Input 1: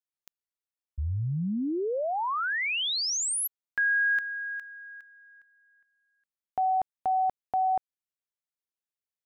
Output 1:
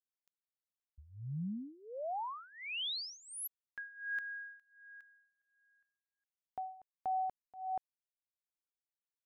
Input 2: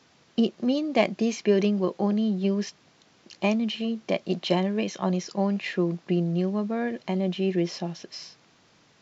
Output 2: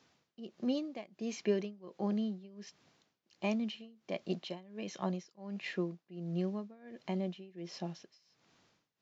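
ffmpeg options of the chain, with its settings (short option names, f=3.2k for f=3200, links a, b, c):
-af "tremolo=f=1.4:d=0.93,volume=-8.5dB"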